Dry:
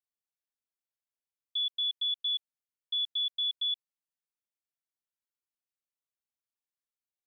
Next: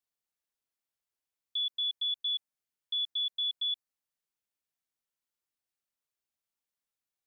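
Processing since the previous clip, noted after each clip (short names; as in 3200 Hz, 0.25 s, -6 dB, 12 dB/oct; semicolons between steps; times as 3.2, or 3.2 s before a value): dynamic EQ 3200 Hz, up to -4 dB, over -45 dBFS; gain +2.5 dB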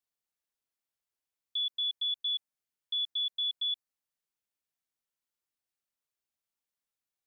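nothing audible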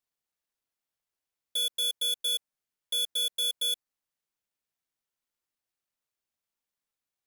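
half-waves squared off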